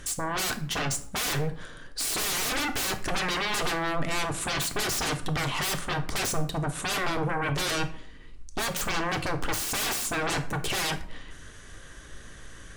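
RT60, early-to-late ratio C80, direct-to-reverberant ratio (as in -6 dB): 0.55 s, 17.0 dB, 6.5 dB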